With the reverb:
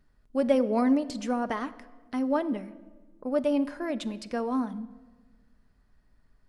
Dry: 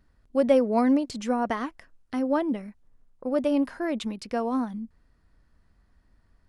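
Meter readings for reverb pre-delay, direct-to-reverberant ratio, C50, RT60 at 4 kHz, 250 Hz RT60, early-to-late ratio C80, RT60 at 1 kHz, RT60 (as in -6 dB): 5 ms, 9.5 dB, 17.0 dB, 0.90 s, 1.9 s, 18.5 dB, 1.2 s, 1.3 s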